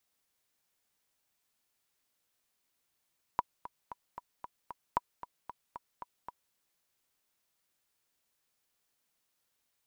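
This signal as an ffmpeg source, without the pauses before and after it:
-f lavfi -i "aevalsrc='pow(10,(-14.5-14.5*gte(mod(t,6*60/228),60/228))/20)*sin(2*PI*974*mod(t,60/228))*exp(-6.91*mod(t,60/228)/0.03)':d=3.15:s=44100"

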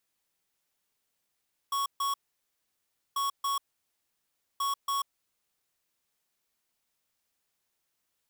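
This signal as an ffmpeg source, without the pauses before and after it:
-f lavfi -i "aevalsrc='0.0335*(2*lt(mod(1110*t,1),0.5)-1)*clip(min(mod(mod(t,1.44),0.28),0.14-mod(mod(t,1.44),0.28))/0.005,0,1)*lt(mod(t,1.44),0.56)':d=4.32:s=44100"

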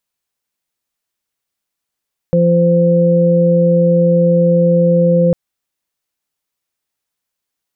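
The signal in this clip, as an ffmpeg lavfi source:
-f lavfi -i "aevalsrc='0.282*sin(2*PI*172*t)+0.0596*sin(2*PI*344*t)+0.282*sin(2*PI*516*t)':d=3:s=44100"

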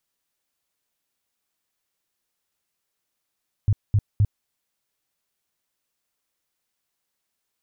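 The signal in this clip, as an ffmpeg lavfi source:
-f lavfi -i "aevalsrc='0.2*sin(2*PI*103*mod(t,0.26))*lt(mod(t,0.26),5/103)':d=0.78:s=44100"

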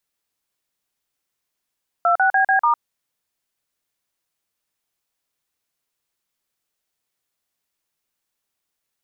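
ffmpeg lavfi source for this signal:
-f lavfi -i "aevalsrc='0.158*clip(min(mod(t,0.146),0.105-mod(t,0.146))/0.002,0,1)*(eq(floor(t/0.146),0)*(sin(2*PI*697*mod(t,0.146))+sin(2*PI*1336*mod(t,0.146)))+eq(floor(t/0.146),1)*(sin(2*PI*770*mod(t,0.146))+sin(2*PI*1477*mod(t,0.146)))+eq(floor(t/0.146),2)*(sin(2*PI*770*mod(t,0.146))+sin(2*PI*1633*mod(t,0.146)))+eq(floor(t/0.146),3)*(sin(2*PI*770*mod(t,0.146))+sin(2*PI*1633*mod(t,0.146)))+eq(floor(t/0.146),4)*(sin(2*PI*941*mod(t,0.146))+sin(2*PI*1209*mod(t,0.146))))':d=0.73:s=44100"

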